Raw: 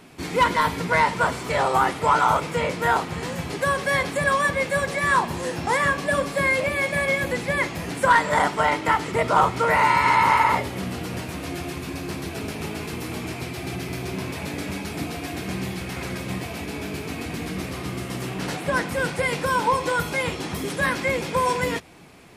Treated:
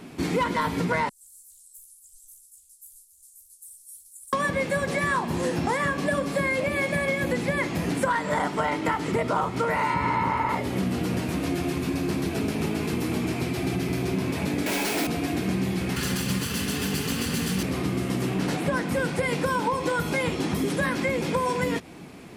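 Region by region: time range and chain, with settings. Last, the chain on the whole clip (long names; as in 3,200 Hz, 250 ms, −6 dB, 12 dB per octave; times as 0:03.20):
0:01.09–0:04.33: inverse Chebyshev band-stop filter 120–2,000 Hz, stop band 80 dB + double-tracking delay 15 ms −7 dB + highs frequency-modulated by the lows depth 0.42 ms
0:09.94–0:10.49: running median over 3 samples + spectral tilt −2 dB per octave
0:14.66–0:15.07: high-pass filter 470 Hz + notch filter 1,200 Hz, Q 8.2 + log-companded quantiser 2 bits
0:15.96–0:17.63: lower of the sound and its delayed copy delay 0.66 ms + high-shelf EQ 2,200 Hz +11.5 dB + notch comb filter 320 Hz
whole clip: parametric band 240 Hz +7.5 dB 1.7 octaves; downward compressor, threshold −23 dBFS; level +1 dB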